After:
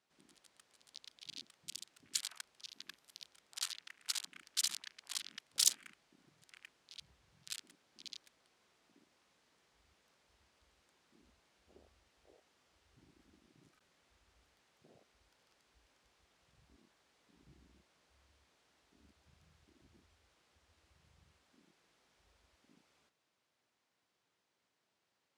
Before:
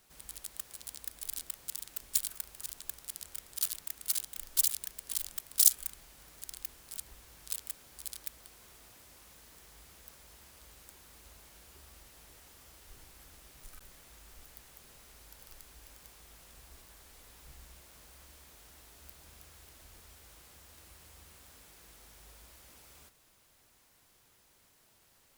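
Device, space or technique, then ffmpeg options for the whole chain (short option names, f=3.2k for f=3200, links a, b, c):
over-cleaned archive recording: -filter_complex "[0:a]highpass=160,lowpass=5.2k,afwtdn=0.00178,asettb=1/sr,asplit=3[a][b][c];[a]atrim=end=2.694[d];[b]atrim=start=2.69:end=3.27,asetpts=PTS-STARTPTS,afade=t=in:d=0.004:c=qsin,afade=t=out:st=0.576:d=0.004:c=qsin,equalizer=f=12k:t=o:w=0.27:g=11[e];[c]atrim=start=3.266[f];[d][e]acrossfade=d=0.004:c1=hsin:c2=qsin[g];[g][f]acrossfade=d=0.004:c1=qsin:c2=hsin,volume=3.5dB"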